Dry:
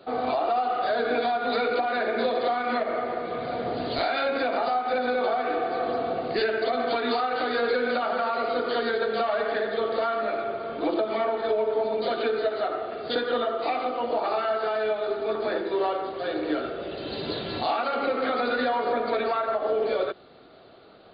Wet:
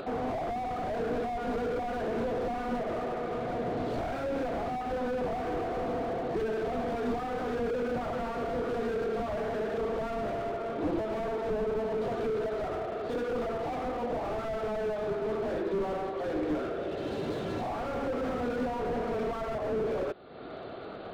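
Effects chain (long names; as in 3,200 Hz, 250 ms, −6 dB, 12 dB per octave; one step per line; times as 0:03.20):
high-frequency loss of the air 290 metres
upward compression, threshold −30 dBFS
slew-rate limiting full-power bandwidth 17 Hz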